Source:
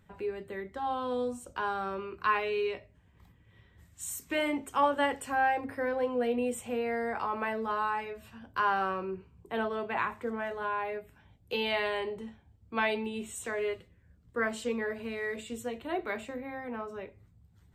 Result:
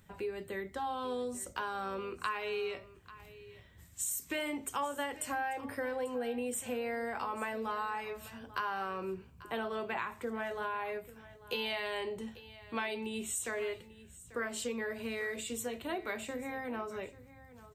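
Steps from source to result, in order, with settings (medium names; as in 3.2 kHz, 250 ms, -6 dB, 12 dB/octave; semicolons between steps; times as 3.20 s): treble shelf 4.1 kHz +11 dB; compression 4:1, threshold -34 dBFS, peak gain reduction 12 dB; on a send: delay 841 ms -17.5 dB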